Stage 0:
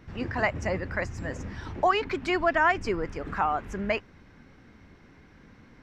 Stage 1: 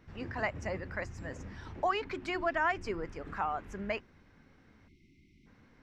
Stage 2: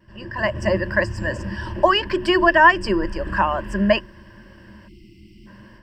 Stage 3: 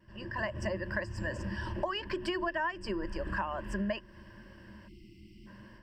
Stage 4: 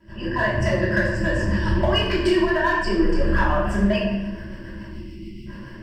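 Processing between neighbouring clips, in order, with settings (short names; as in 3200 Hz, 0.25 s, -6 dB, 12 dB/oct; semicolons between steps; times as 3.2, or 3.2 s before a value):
spectral delete 4.88–5.46, 390–2000 Hz; notches 60/120/180/240/300/360 Hz; gain -7.5 dB
ripple EQ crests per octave 1.3, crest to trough 16 dB; AGC gain up to 12 dB; vibrato 0.54 Hz 14 cents; gain +2 dB
compressor 6:1, threshold -24 dBFS, peak gain reduction 16 dB; gain -7 dB
rotary speaker horn 7 Hz; in parallel at -10.5 dB: wavefolder -33 dBFS; on the sum: shoebox room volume 500 m³, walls mixed, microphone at 2.9 m; gain +6.5 dB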